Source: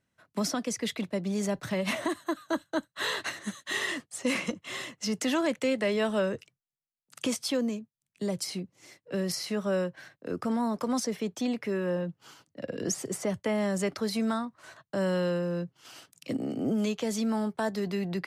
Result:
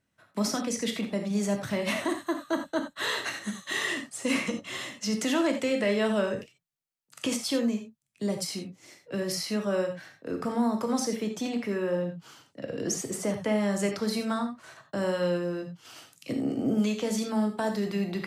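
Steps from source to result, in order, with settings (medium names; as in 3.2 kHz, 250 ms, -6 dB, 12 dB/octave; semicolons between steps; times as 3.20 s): gated-style reverb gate 110 ms flat, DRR 4 dB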